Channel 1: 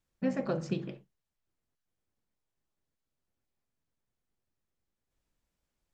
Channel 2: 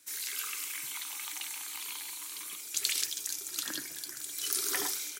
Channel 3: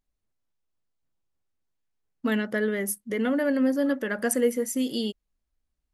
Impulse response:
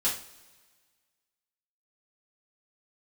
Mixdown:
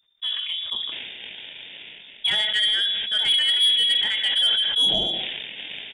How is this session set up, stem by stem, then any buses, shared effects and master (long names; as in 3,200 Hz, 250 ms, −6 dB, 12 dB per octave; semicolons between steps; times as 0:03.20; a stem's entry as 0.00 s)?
+1.5 dB, 0.00 s, no send, no processing
−2.5 dB, 0.85 s, send −22.5 dB, sample-rate reduction 2,400 Hz, jitter 0%; automatic ducking −11 dB, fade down 0.35 s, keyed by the third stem
+2.0 dB, 0.00 s, send −11.5 dB, no processing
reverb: on, pre-delay 3 ms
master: voice inversion scrambler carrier 3,600 Hz; soft clipping −13.5 dBFS, distortion −18 dB; level that may fall only so fast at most 29 dB per second